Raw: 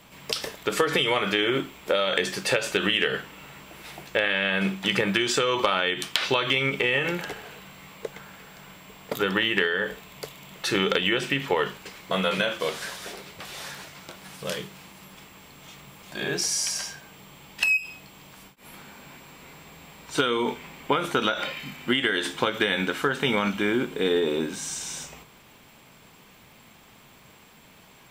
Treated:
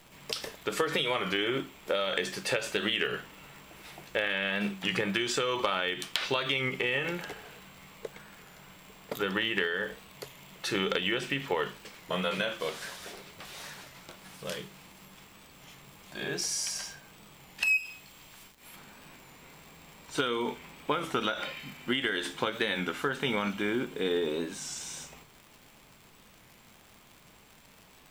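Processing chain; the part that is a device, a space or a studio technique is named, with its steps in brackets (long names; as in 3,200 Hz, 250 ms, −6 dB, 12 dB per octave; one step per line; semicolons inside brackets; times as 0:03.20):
0:17.66–0:18.76: tilt shelving filter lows −4 dB, about 1,200 Hz
warped LP (wow of a warped record 33 1/3 rpm, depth 100 cents; surface crackle 110 per second −36 dBFS; pink noise bed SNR 30 dB)
level −6 dB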